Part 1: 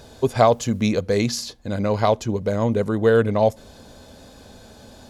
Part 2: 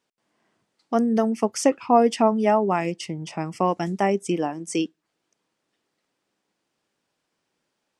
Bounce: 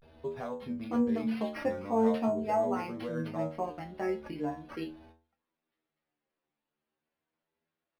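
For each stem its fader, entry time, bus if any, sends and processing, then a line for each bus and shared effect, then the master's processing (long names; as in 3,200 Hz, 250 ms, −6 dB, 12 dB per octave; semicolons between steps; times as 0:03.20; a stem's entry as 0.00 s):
−1.5 dB, 0.00 s, no send, high-shelf EQ 6,000 Hz −9 dB; downward compressor 6 to 1, threshold −22 dBFS, peak gain reduction 11.5 dB
−0.5 dB, 0.00 s, no send, no processing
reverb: not used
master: stiff-string resonator 76 Hz, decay 0.45 s, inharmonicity 0.002; pitch vibrato 0.42 Hz 87 cents; linearly interpolated sample-rate reduction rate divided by 6×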